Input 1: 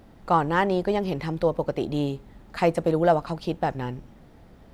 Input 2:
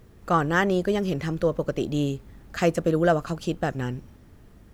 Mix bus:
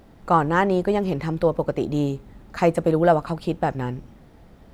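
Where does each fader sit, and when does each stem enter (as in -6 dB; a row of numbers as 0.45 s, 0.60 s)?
+1.0 dB, -9.0 dB; 0.00 s, 0.00 s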